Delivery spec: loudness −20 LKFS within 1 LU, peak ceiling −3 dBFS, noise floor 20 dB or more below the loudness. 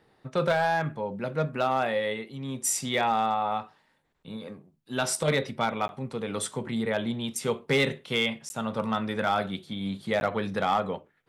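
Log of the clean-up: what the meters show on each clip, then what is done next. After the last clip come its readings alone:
share of clipped samples 0.3%; peaks flattened at −16.5 dBFS; number of dropouts 3; longest dropout 11 ms; integrated loudness −28.5 LKFS; sample peak −16.5 dBFS; target loudness −20.0 LKFS
→ clipped peaks rebuilt −16.5 dBFS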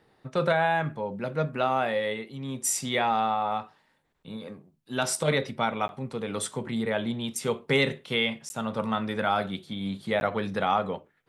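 share of clipped samples 0.0%; number of dropouts 3; longest dropout 11 ms
→ repair the gap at 0:05.88/0:08.49/0:10.20, 11 ms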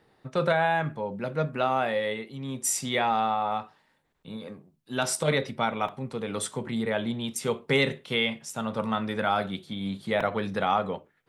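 number of dropouts 0; integrated loudness −28.0 LKFS; sample peak −10.0 dBFS; target loudness −20.0 LKFS
→ level +8 dB
brickwall limiter −3 dBFS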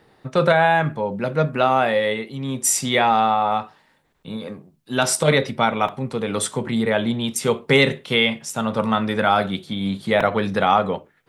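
integrated loudness −20.0 LKFS; sample peak −3.0 dBFS; background noise floor −60 dBFS

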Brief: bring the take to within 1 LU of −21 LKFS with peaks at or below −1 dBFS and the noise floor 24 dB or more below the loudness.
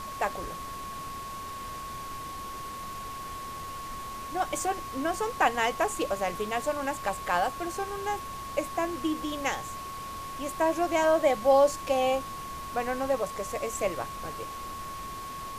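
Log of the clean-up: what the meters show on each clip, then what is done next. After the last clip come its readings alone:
interfering tone 1,100 Hz; level of the tone −37 dBFS; background noise floor −39 dBFS; target noise floor −55 dBFS; integrated loudness −30.5 LKFS; sample peak −10.0 dBFS; target loudness −21.0 LKFS
→ notch filter 1,100 Hz, Q 30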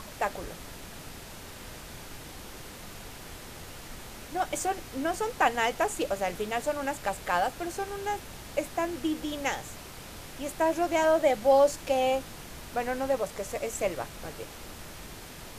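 interfering tone none found; background noise floor −45 dBFS; target noise floor −54 dBFS
→ noise reduction from a noise print 9 dB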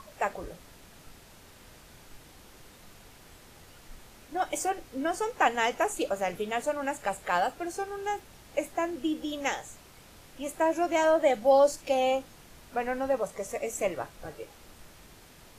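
background noise floor −54 dBFS; integrated loudness −29.5 LKFS; sample peak −10.5 dBFS; target loudness −21.0 LKFS
→ level +8.5 dB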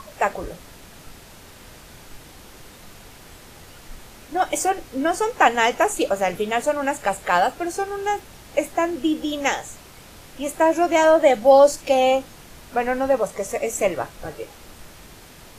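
integrated loudness −21.0 LKFS; sample peak −2.0 dBFS; background noise floor −45 dBFS

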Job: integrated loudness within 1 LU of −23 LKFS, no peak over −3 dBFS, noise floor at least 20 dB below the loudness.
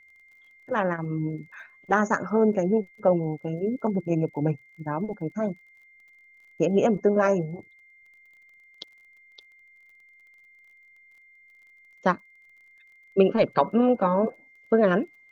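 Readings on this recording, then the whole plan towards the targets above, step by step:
crackle rate 30 per second; interfering tone 2,100 Hz; level of the tone −53 dBFS; integrated loudness −25.0 LKFS; sample peak −6.0 dBFS; target loudness −23.0 LKFS
→ click removal
notch filter 2,100 Hz, Q 30
level +2 dB

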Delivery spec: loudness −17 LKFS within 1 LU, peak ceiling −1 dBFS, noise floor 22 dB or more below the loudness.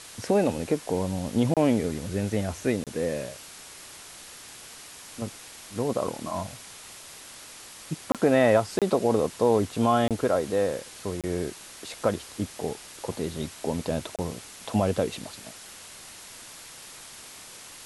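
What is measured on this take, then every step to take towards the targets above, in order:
number of dropouts 7; longest dropout 27 ms; background noise floor −45 dBFS; target noise floor −50 dBFS; integrated loudness −27.5 LKFS; sample peak −8.5 dBFS; target loudness −17.0 LKFS
→ repair the gap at 0:01.54/0:02.84/0:08.12/0:08.79/0:10.08/0:11.21/0:14.16, 27 ms
noise reduction from a noise print 6 dB
level +10.5 dB
brickwall limiter −1 dBFS

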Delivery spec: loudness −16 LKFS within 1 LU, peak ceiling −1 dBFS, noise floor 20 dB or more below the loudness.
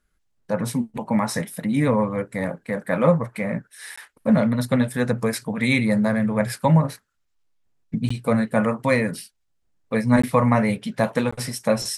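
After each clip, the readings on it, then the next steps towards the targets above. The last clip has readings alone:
number of dropouts 4; longest dropout 15 ms; integrated loudness −22.5 LKFS; sample peak −5.0 dBFS; target loudness −16.0 LKFS
→ repair the gap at 0:03.96/0:08.09/0:10.22/0:11.31, 15 ms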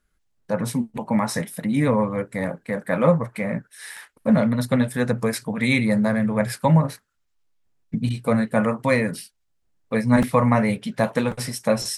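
number of dropouts 0; integrated loudness −22.5 LKFS; sample peak −5.0 dBFS; target loudness −16.0 LKFS
→ level +6.5 dB
brickwall limiter −1 dBFS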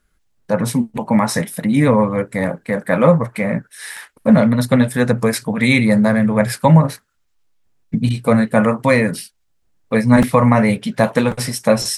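integrated loudness −16.0 LKFS; sample peak −1.0 dBFS; background noise floor −64 dBFS

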